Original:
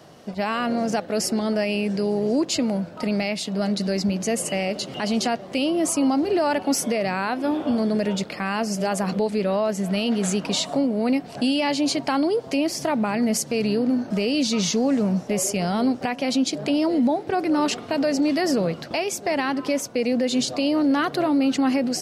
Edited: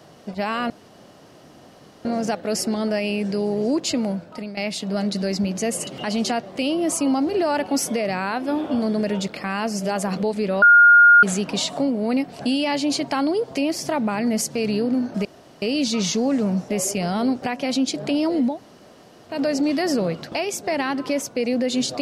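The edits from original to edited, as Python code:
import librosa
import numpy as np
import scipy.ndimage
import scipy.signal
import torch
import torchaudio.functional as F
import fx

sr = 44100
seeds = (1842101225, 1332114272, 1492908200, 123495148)

y = fx.edit(x, sr, fx.insert_room_tone(at_s=0.7, length_s=1.35),
    fx.fade_out_to(start_s=2.74, length_s=0.48, floor_db=-15.0),
    fx.cut(start_s=4.52, length_s=0.31),
    fx.bleep(start_s=9.58, length_s=0.61, hz=1420.0, db=-7.5),
    fx.insert_room_tone(at_s=14.21, length_s=0.37),
    fx.room_tone_fill(start_s=17.11, length_s=0.81, crossfade_s=0.16), tone=tone)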